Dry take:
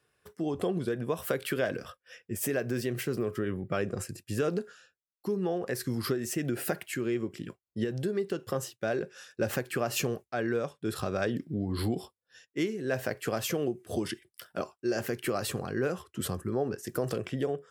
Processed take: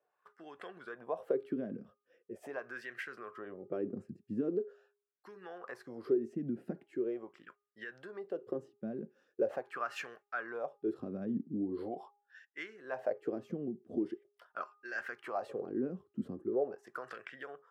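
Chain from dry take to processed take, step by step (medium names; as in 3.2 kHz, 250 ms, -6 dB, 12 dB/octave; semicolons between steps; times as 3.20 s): bass shelf 92 Hz -10 dB; wah-wah 0.42 Hz 210–1700 Hz, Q 3.7; de-hum 408.9 Hz, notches 3; trim +3.5 dB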